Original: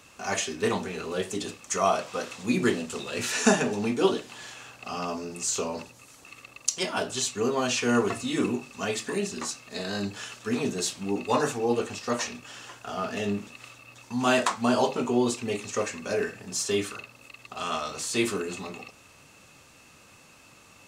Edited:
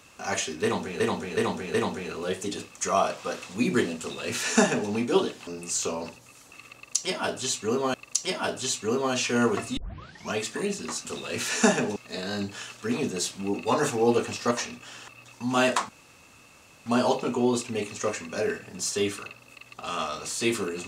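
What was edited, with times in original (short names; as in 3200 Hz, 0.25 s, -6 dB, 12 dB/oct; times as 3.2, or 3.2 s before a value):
0.63–1 loop, 4 plays
2.88–3.79 copy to 9.58
4.36–5.2 cut
6.47–7.67 loop, 2 plays
8.3 tape start 0.55 s
11.45–12.13 gain +3.5 dB
12.7–13.78 cut
14.59 insert room tone 0.97 s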